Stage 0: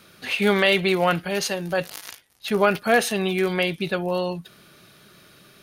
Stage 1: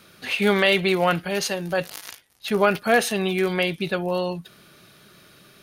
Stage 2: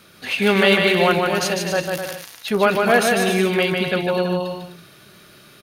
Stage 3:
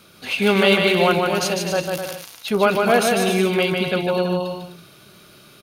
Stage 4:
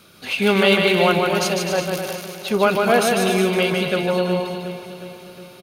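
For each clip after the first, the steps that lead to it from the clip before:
no processing that can be heard
bouncing-ball delay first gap 150 ms, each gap 0.7×, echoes 5; level +2 dB
parametric band 1,800 Hz −8.5 dB 0.26 octaves
repeating echo 363 ms, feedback 57%, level −12.5 dB

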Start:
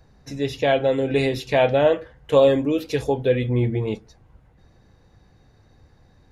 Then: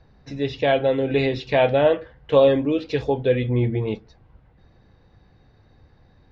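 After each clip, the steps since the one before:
low-pass filter 4,700 Hz 24 dB per octave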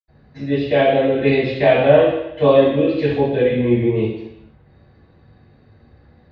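convolution reverb RT60 0.85 s, pre-delay 77 ms
level −4 dB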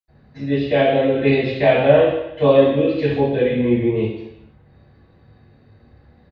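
double-tracking delay 29 ms −11 dB
level −1 dB

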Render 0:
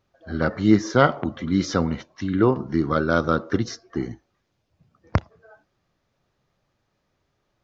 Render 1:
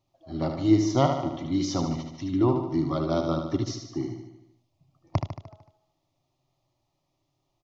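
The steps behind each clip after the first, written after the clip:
phaser with its sweep stopped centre 310 Hz, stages 8
on a send: repeating echo 75 ms, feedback 57%, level −6.5 dB
on the sum: level −2 dB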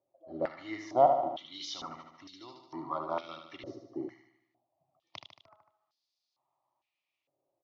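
band-pass on a step sequencer 2.2 Hz 520–4,600 Hz
level +5 dB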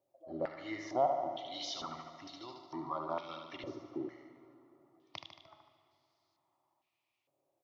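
downward compressor 1.5 to 1, threshold −42 dBFS, peak gain reduction 9 dB
dense smooth reverb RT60 3.7 s, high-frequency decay 0.55×, DRR 12 dB
level +1 dB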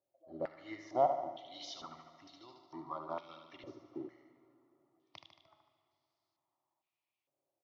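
expander for the loud parts 1.5 to 1, over −45 dBFS
level +1.5 dB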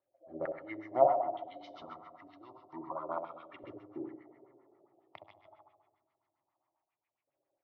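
gain on a spectral selection 0:04.25–0:05.89, 350–930 Hz +6 dB
flutter between parallel walls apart 11.2 metres, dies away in 0.62 s
auto-filter low-pass sine 7.4 Hz 500–2,200 Hz

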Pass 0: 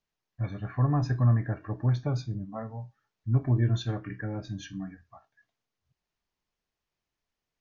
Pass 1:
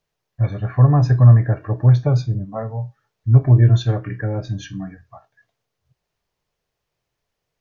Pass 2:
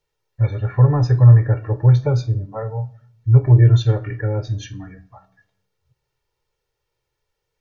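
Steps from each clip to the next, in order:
octave-band graphic EQ 125/250/500 Hz +7/−5/+7 dB; level +7 dB
convolution reverb RT60 0.65 s, pre-delay 3 ms, DRR 17 dB; level −2 dB

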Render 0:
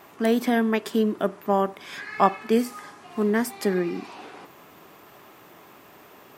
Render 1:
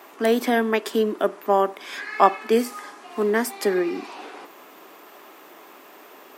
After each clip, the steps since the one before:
high-pass filter 260 Hz 24 dB per octave
level +3.5 dB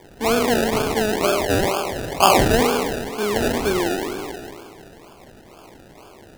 peak hold with a decay on every bin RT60 2.30 s
sample-and-hold swept by an LFO 32×, swing 60% 2.1 Hz
level −2 dB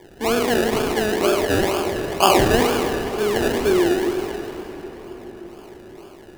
hollow resonant body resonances 360/1,700/2,900 Hz, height 8 dB
convolution reverb RT60 5.9 s, pre-delay 52 ms, DRR 9 dB
level −2 dB

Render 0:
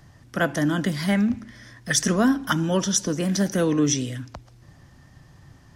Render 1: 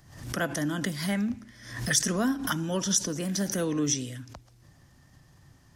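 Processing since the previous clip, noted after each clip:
high-shelf EQ 5,700 Hz +8.5 dB
background raised ahead of every attack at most 79 dB per second
level −7.5 dB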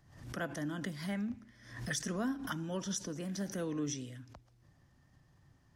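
high-shelf EQ 4,400 Hz −8.5 dB
level −8.5 dB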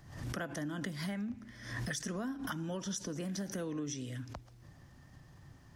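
downward compressor, threshold −45 dBFS, peak gain reduction 13 dB
level +9 dB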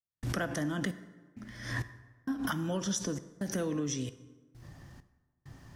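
gate pattern ".xxx..xx..xxxx" 66 BPM −60 dB
dense smooth reverb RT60 1.3 s, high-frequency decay 0.6×, DRR 12.5 dB
level +5.5 dB

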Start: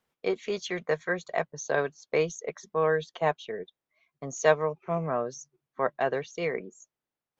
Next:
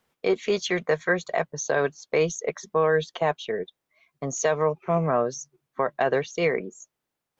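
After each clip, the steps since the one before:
brickwall limiter −19 dBFS, peak gain reduction 11 dB
level +7 dB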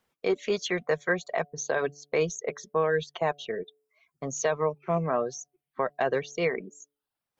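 hum removal 144.3 Hz, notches 5
reverb reduction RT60 0.51 s
level −3 dB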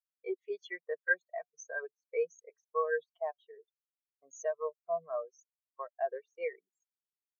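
high-pass filter 1,100 Hz 6 dB per octave
every bin expanded away from the loudest bin 2.5 to 1

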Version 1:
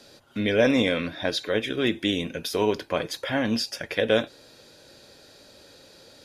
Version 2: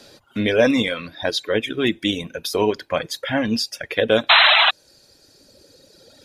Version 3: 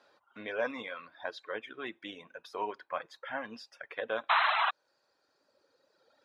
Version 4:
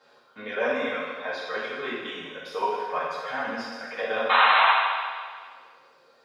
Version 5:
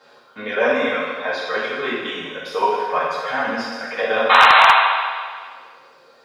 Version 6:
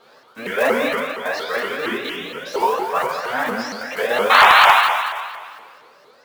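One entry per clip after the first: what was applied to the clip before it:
sound drawn into the spectrogram noise, 0:04.29–0:04.71, 580–4,100 Hz −16 dBFS; reverb reduction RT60 1.9 s; level +5 dB
tape wow and flutter 26 cents; resonant band-pass 1,100 Hz, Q 2; level −7 dB
convolution reverb RT60 1.8 s, pre-delay 3 ms, DRR −9.5 dB
wave folding −9 dBFS; level +8 dB
one scale factor per block 5 bits; pitch modulation by a square or saw wave saw up 4.3 Hz, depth 250 cents

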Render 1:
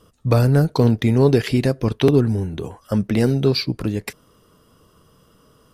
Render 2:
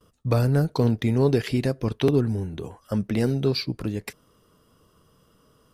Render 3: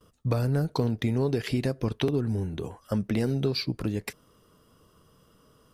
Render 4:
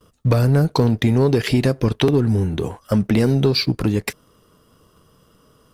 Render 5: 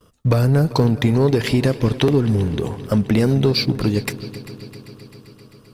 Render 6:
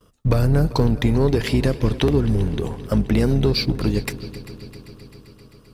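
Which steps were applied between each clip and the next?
noise gate with hold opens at −50 dBFS; level −5.5 dB
downward compressor, threshold −22 dBFS, peak gain reduction 7.5 dB
leveller curve on the samples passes 1; level +7 dB
echo machine with several playback heads 131 ms, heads second and third, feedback 65%, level −18 dB
sub-octave generator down 2 octaves, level −4 dB; level −2.5 dB

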